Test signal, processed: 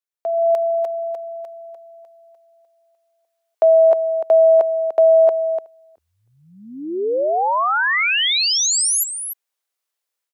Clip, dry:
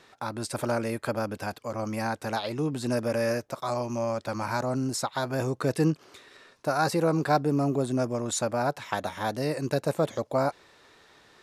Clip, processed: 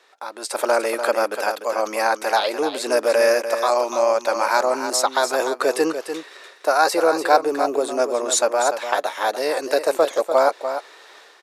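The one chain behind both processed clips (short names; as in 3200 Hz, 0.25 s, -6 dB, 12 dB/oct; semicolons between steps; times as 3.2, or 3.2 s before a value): AGC gain up to 12 dB; HPF 400 Hz 24 dB/oct; on a send: echo 0.295 s -9 dB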